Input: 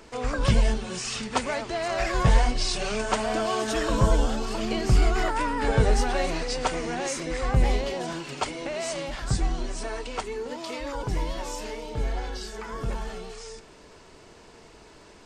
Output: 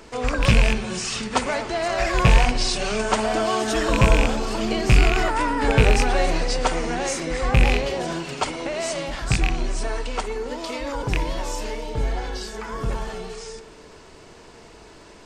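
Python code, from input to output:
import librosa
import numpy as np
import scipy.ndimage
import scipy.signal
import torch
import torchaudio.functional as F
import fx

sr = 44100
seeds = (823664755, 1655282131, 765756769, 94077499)

y = fx.rattle_buzz(x, sr, strikes_db=-21.0, level_db=-13.0)
y = fx.echo_bbd(y, sr, ms=60, stages=1024, feedback_pct=74, wet_db=-14)
y = y * librosa.db_to_amplitude(4.0)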